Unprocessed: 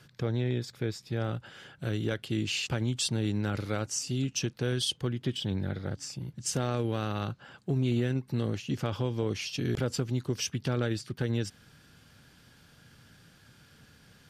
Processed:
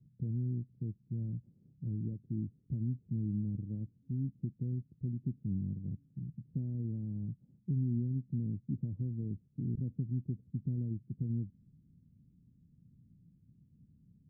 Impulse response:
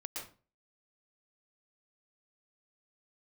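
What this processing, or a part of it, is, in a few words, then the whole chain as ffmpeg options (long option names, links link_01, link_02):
the neighbour's flat through the wall: -af "lowpass=frequency=250:width=0.5412,lowpass=frequency=250:width=1.3066,equalizer=frequency=180:width_type=o:width=0.77:gain=4,highshelf=frequency=1800:width_type=q:width=1.5:gain=-12.5,volume=-5dB"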